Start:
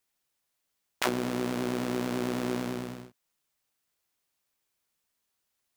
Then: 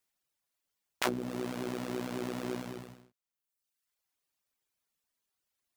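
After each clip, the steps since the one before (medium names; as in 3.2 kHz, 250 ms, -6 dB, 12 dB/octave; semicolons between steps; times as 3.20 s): reverb removal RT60 1.1 s; trim -2.5 dB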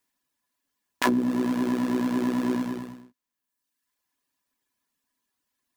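small resonant body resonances 260/1000/1700 Hz, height 13 dB, ringing for 50 ms; trim +3.5 dB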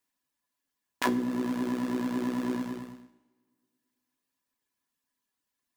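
two-slope reverb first 0.91 s, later 2.5 s, from -20 dB, DRR 11.5 dB; trim -4.5 dB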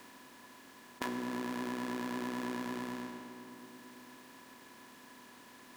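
spectral levelling over time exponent 0.4; compression 3:1, threshold -30 dBFS, peak gain reduction 8 dB; trim -6 dB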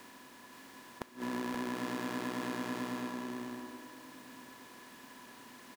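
inverted gate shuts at -25 dBFS, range -26 dB; delay 528 ms -4.5 dB; trim +1 dB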